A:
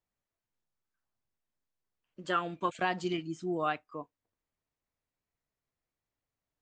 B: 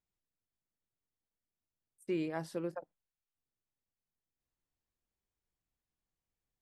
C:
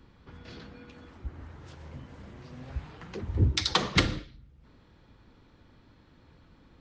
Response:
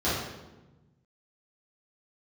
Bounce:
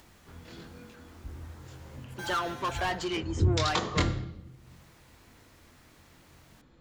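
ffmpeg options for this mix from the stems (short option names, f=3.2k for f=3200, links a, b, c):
-filter_complex "[0:a]asplit=2[a][b];[b]highpass=f=720:p=1,volume=24dB,asoftclip=type=tanh:threshold=-15.5dB[c];[a][c]amix=inputs=2:normalize=0,lowpass=f=6.3k:p=1,volume=-6dB,acompressor=mode=upward:threshold=-35dB:ratio=2.5,volume=-7dB,asplit=2[d][e];[1:a]aeval=exprs='0.0596*sin(PI/2*2.24*val(0)/0.0596)':c=same,aeval=exprs='val(0)*sgn(sin(2*PI*1200*n/s))':c=same,adelay=100,volume=-11dB,asplit=2[f][g];[g]volume=-15dB[h];[2:a]equalizer=f=7.1k:w=7.9:g=12.5,flanger=delay=22.5:depth=2:speed=1.1,adynamicequalizer=threshold=0.00355:dfrequency=1500:dqfactor=0.7:tfrequency=1500:tqfactor=0.7:attack=5:release=100:ratio=0.375:range=3.5:mode=cutabove:tftype=highshelf,volume=0.5dB,asplit=2[i][j];[j]volume=-23.5dB[k];[e]apad=whole_len=296080[l];[f][l]sidechaincompress=threshold=-47dB:ratio=8:attack=45:release=390[m];[3:a]atrim=start_sample=2205[n];[h][k]amix=inputs=2:normalize=0[o];[o][n]afir=irnorm=-1:irlink=0[p];[d][m][i][p]amix=inputs=4:normalize=0"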